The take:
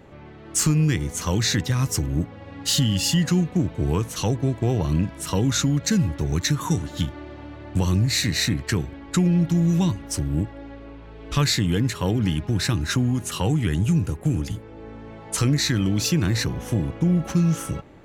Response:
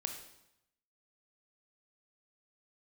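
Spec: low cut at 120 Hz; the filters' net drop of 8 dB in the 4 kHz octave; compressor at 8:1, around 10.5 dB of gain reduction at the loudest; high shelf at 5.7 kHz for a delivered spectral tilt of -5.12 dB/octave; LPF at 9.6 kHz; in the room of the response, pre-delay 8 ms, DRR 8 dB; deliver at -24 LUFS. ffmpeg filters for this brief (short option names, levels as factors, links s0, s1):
-filter_complex "[0:a]highpass=120,lowpass=9600,equalizer=f=4000:t=o:g=-7,highshelf=f=5700:g=-6.5,acompressor=threshold=0.0398:ratio=8,asplit=2[s0][s1];[1:a]atrim=start_sample=2205,adelay=8[s2];[s1][s2]afir=irnorm=-1:irlink=0,volume=0.398[s3];[s0][s3]amix=inputs=2:normalize=0,volume=2.66"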